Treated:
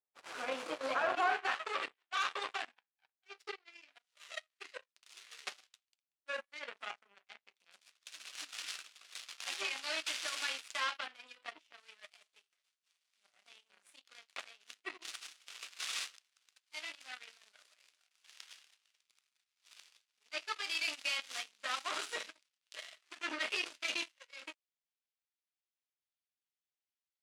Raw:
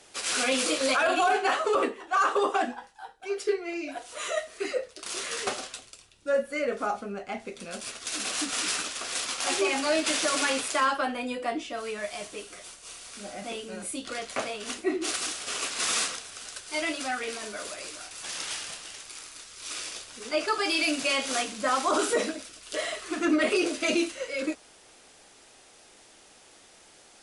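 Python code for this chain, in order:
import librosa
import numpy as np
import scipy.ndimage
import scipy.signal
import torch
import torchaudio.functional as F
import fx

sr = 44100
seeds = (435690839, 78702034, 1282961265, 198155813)

y = fx.cheby_harmonics(x, sr, harmonics=(2, 7), levels_db=(-10, -17), full_scale_db=-13.0)
y = fx.filter_sweep_bandpass(y, sr, from_hz=880.0, to_hz=3000.0, start_s=0.99, end_s=1.89, q=0.86)
y = y * librosa.db_to_amplitude(-6.0)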